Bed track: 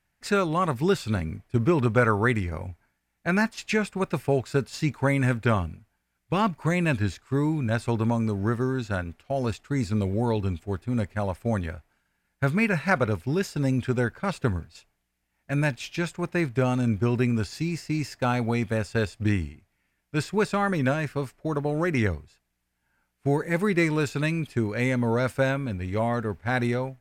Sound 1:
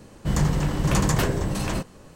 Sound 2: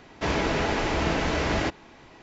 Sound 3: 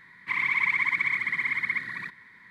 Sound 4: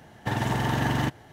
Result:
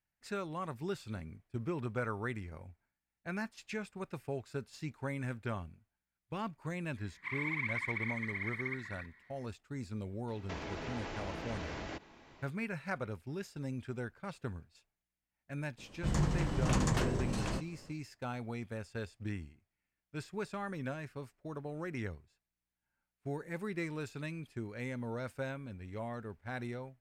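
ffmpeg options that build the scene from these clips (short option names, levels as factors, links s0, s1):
-filter_complex "[0:a]volume=0.168[s0];[2:a]acompressor=threshold=0.0316:ratio=6:attack=3.2:release=140:knee=1:detection=peak[s1];[1:a]lowpass=8500[s2];[3:a]atrim=end=2.5,asetpts=PTS-STARTPTS,volume=0.237,afade=t=in:d=0.004:c=hsin,afade=t=out:st=2.496:d=0.004:c=hsin,adelay=6960[s3];[s1]atrim=end=2.22,asetpts=PTS-STARTPTS,volume=0.376,afade=t=in:d=0.004:c=hsin,afade=t=out:st=2.216:d=0.004:c=hsin,adelay=10280[s4];[s2]atrim=end=2.15,asetpts=PTS-STARTPTS,volume=0.335,afade=t=in:d=0.004:c=hsin,afade=t=out:st=2.146:d=0.004:c=hsin,adelay=15780[s5];[s0][s3][s4][s5]amix=inputs=4:normalize=0"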